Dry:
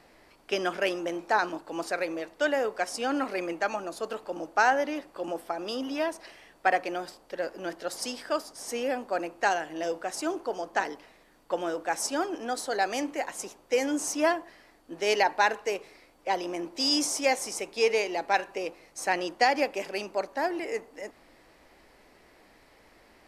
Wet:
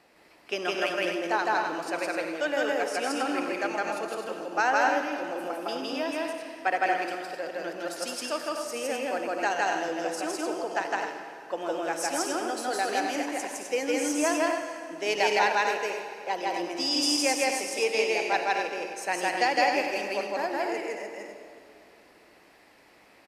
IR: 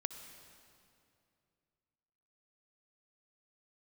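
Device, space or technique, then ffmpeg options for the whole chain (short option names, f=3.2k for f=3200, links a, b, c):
stadium PA: -filter_complex "[0:a]highpass=f=180:p=1,equalizer=f=2.6k:t=o:w=0.22:g=4,aecho=1:1:160.3|218.7|256.6:1|0.316|0.501[a];[1:a]atrim=start_sample=2205[b];[a][b]afir=irnorm=-1:irlink=0,volume=-1.5dB"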